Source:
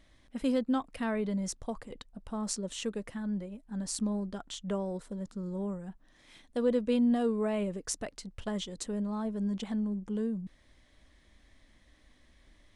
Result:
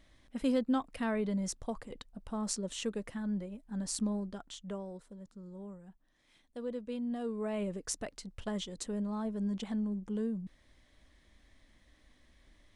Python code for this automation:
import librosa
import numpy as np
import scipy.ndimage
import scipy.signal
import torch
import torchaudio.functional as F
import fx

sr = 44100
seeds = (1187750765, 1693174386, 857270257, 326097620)

y = fx.gain(x, sr, db=fx.line((4.02, -1.0), (5.17, -11.0), (7.02, -11.0), (7.71, -2.0)))